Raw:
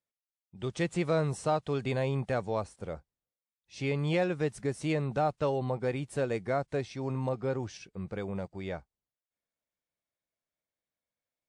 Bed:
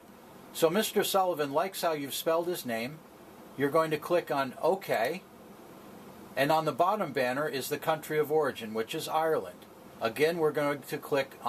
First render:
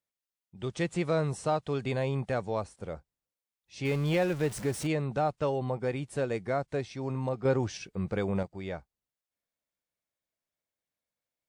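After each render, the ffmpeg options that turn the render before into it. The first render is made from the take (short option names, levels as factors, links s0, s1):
-filter_complex "[0:a]asettb=1/sr,asplit=3[s0][s1][s2];[s0]atrim=end=3.854[s3];[s1]atrim=start=3.85:end=4.87,asetpts=PTS-STARTPTS,afade=t=in:d=0.004:c=qsin,afade=t=out:st=1.016:d=0.004:c=qsin,aeval=exprs='val(0)+0.5*0.015*sgn(val(0))':c=same[s4];[s2]atrim=start=4.866[s5];[s3][s4]acrossfade=d=0.004:c1=hsin:c2=qsin[s6];[s6][s5]acrossfade=d=0.004:c1=qsin:c2=hsin,asettb=1/sr,asplit=3[s7][s8][s9];[s7]atrim=end=5.394[s10];[s8]atrim=start=5.39:end=5.9,asetpts=PTS-STARTPTS,afade=t=in:d=0.004:c=qsin,afade=t=out:st=0.506:d=0.004:c=qsin,bandreject=f=4000:w=12[s11];[s9]atrim=start=5.896[s12];[s10][s11]acrossfade=d=0.004:c1=hsin:c2=qsin[s13];[s13][s12]acrossfade=d=0.004:c1=qsin:c2=hsin,asettb=1/sr,asplit=3[s14][s15][s16];[s14]atrim=end=7.454[s17];[s15]atrim=start=7.45:end=8.43,asetpts=PTS-STARTPTS,afade=t=in:d=0.004:c=qsin,afade=t=out:st=0.976:d=0.004:c=qsin,acontrast=46[s18];[s16]atrim=start=8.426[s19];[s17][s18]acrossfade=d=0.004:c1=hsin:c2=qsin[s20];[s20][s19]acrossfade=d=0.004:c1=qsin:c2=hsin"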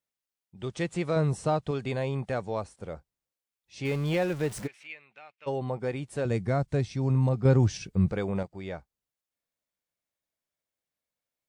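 -filter_complex "[0:a]asettb=1/sr,asplit=3[s0][s1][s2];[s0]atrim=end=1.164[s3];[s1]atrim=start=1.16:end=1.71,asetpts=PTS-STARTPTS,afade=t=in:d=0.004:c=qsin,afade=t=out:st=0.546:d=0.004:c=qsin,lowshelf=f=340:g=6.5[s4];[s2]atrim=start=1.706[s5];[s3][s4]acrossfade=d=0.004:c1=hsin:c2=qsin[s6];[s6][s5]acrossfade=d=0.004:c1=qsin:c2=hsin,asplit=3[s7][s8][s9];[s7]afade=t=out:st=4.66:d=0.02[s10];[s8]bandpass=f=2400:t=q:w=4.7,afade=t=in:st=4.66:d=0.02,afade=t=out:st=5.46:d=0.02[s11];[s9]afade=t=in:st=5.46:d=0.02[s12];[s10][s11][s12]amix=inputs=3:normalize=0,asettb=1/sr,asplit=3[s13][s14][s15];[s13]atrim=end=6.254[s16];[s14]atrim=start=6.25:end=8.12,asetpts=PTS-STARTPTS,afade=t=in:d=0.004:c=qsin,afade=t=out:st=1.866:d=0.004:c=qsin,bass=f=250:g=12,treble=f=4000:g=4[s17];[s15]atrim=start=8.116[s18];[s16][s17]acrossfade=d=0.004:c1=hsin:c2=qsin[s19];[s19][s18]acrossfade=d=0.004:c1=qsin:c2=hsin"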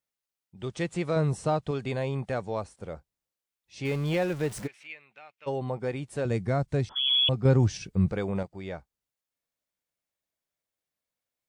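-filter_complex "[0:a]asettb=1/sr,asplit=3[s0][s1][s2];[s0]atrim=end=6.894[s3];[s1]atrim=start=6.89:end=7.29,asetpts=PTS-STARTPTS,afade=t=in:d=0.004:c=qsin,afade=t=out:st=0.396:d=0.004:c=qsin,lowpass=f=3000:t=q:w=0.5098,lowpass=f=3000:t=q:w=0.6013,lowpass=f=3000:t=q:w=0.9,lowpass=f=3000:t=q:w=2.563,afreqshift=-3500[s4];[s2]atrim=start=7.286[s5];[s3][s4]acrossfade=d=0.004:c1=hsin:c2=qsin[s6];[s6][s5]acrossfade=d=0.004:c1=qsin:c2=hsin"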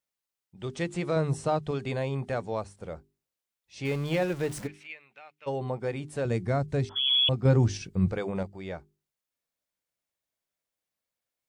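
-af "bandreject=f=50:t=h:w=6,bandreject=f=100:t=h:w=6,bandreject=f=150:t=h:w=6,bandreject=f=200:t=h:w=6,bandreject=f=250:t=h:w=6,bandreject=f=300:t=h:w=6,bandreject=f=350:t=h:w=6,bandreject=f=400:t=h:w=6"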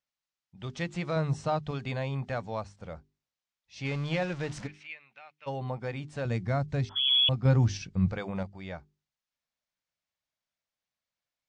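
-af "lowpass=f=6500:w=0.5412,lowpass=f=6500:w=1.3066,equalizer=f=390:t=o:w=0.84:g=-9"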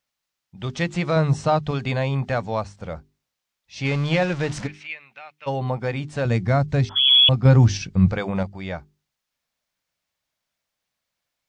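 -af "volume=2.99,alimiter=limit=0.708:level=0:latency=1"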